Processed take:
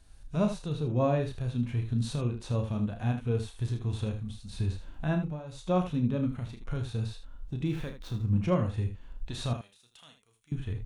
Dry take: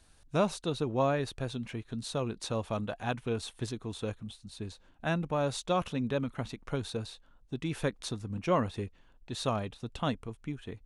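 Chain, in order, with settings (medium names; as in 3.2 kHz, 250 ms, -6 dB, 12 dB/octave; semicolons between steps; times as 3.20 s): 7.67–8.37 s: median filter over 5 samples; recorder AGC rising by 19 dB/s; bass shelf 150 Hz +10.5 dB; 5.18–5.69 s: dip -17 dB, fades 0.24 s; harmonic-percussive split percussive -13 dB; 9.53–10.52 s: differentiator; early reflections 33 ms -7.5 dB, 78 ms -10 dB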